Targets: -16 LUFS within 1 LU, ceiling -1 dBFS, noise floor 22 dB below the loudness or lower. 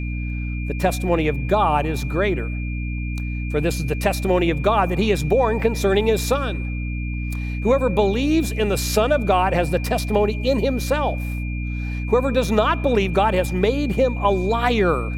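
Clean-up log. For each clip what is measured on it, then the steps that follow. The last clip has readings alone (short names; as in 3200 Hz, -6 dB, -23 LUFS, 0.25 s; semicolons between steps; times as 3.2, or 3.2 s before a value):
hum 60 Hz; harmonics up to 300 Hz; hum level -23 dBFS; steady tone 2400 Hz; tone level -35 dBFS; loudness -21.0 LUFS; peak -3.5 dBFS; loudness target -16.0 LUFS
-> notches 60/120/180/240/300 Hz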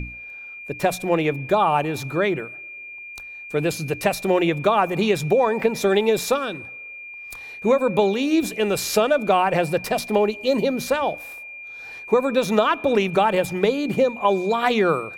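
hum none; steady tone 2400 Hz; tone level -35 dBFS
-> notch 2400 Hz, Q 30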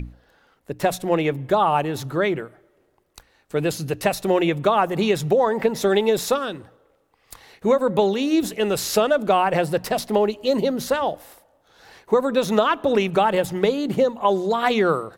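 steady tone none; loudness -21.0 LUFS; peak -4.0 dBFS; loudness target -16.0 LUFS
-> gain +5 dB; limiter -1 dBFS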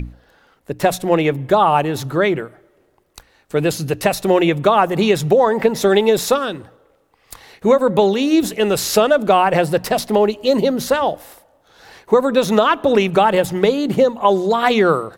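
loudness -16.5 LUFS; peak -1.0 dBFS; noise floor -58 dBFS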